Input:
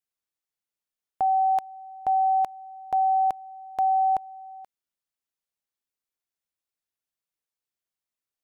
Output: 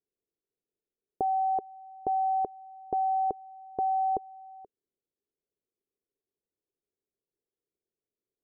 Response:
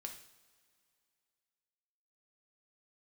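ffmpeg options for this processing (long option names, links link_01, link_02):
-af "lowpass=frequency=410:width_type=q:width=4.9,volume=2.5dB"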